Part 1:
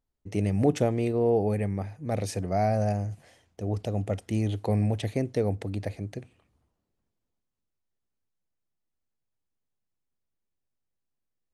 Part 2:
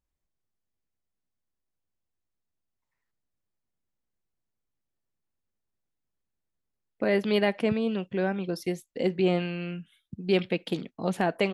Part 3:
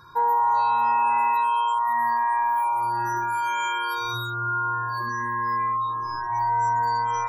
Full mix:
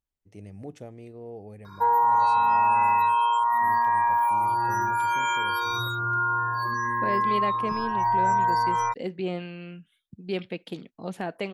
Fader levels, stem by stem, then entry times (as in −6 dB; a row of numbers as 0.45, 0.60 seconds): −17.0, −6.0, +0.5 decibels; 0.00, 0.00, 1.65 seconds